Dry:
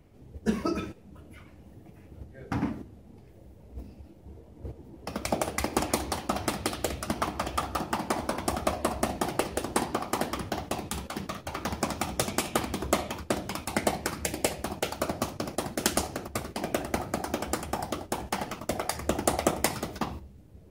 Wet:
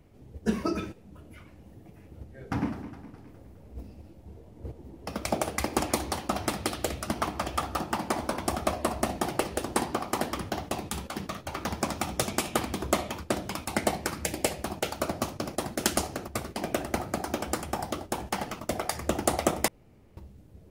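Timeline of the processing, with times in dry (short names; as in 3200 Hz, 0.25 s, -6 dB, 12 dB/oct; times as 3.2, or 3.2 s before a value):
2.05–5.37 warbling echo 0.207 s, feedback 52%, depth 87 cents, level -12 dB
19.68–20.17 room tone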